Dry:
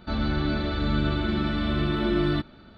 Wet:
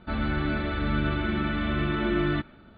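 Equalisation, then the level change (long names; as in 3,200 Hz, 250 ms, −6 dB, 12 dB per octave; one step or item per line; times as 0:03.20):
low-pass filter 3,200 Hz 24 dB per octave
dynamic equaliser 2,000 Hz, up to +6 dB, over −49 dBFS, Q 1.1
−2.0 dB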